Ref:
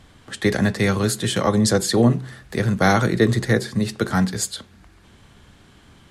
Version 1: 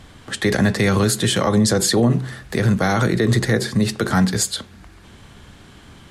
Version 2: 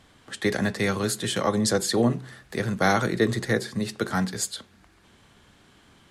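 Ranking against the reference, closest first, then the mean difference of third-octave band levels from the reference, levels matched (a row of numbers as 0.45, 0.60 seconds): 2, 1; 1.5, 3.0 decibels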